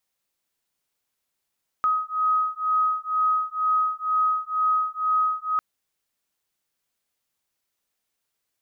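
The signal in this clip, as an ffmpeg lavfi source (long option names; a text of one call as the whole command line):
ffmpeg -f lavfi -i "aevalsrc='0.0668*(sin(2*PI*1260*t)+sin(2*PI*1262.1*t))':duration=3.75:sample_rate=44100" out.wav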